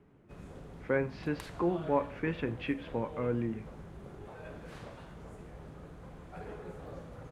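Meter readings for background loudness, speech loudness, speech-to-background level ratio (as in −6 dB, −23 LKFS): −48.0 LKFS, −34.5 LKFS, 13.5 dB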